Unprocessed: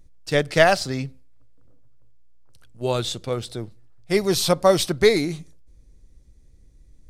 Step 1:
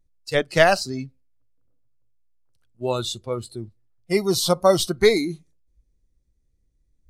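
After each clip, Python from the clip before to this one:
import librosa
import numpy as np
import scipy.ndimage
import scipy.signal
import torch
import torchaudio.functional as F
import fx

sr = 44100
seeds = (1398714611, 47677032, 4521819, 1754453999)

y = fx.noise_reduce_blind(x, sr, reduce_db=16)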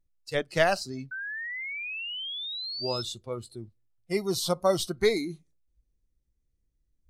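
y = fx.spec_paint(x, sr, seeds[0], shape='rise', start_s=1.11, length_s=1.92, low_hz=1500.0, high_hz=5300.0, level_db=-28.0)
y = F.gain(torch.from_numpy(y), -7.5).numpy()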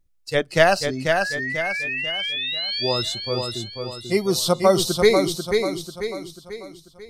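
y = fx.echo_feedback(x, sr, ms=491, feedback_pct=45, wet_db=-5.0)
y = F.gain(torch.from_numpy(y), 7.5).numpy()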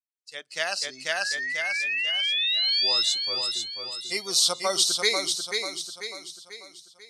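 y = fx.fade_in_head(x, sr, length_s=1.34)
y = fx.weighting(y, sr, curve='ITU-R 468')
y = F.gain(torch.from_numpy(y), -7.5).numpy()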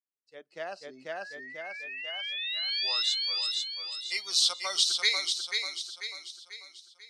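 y = fx.filter_sweep_bandpass(x, sr, from_hz=330.0, to_hz=3000.0, start_s=1.56, end_s=3.27, q=0.91)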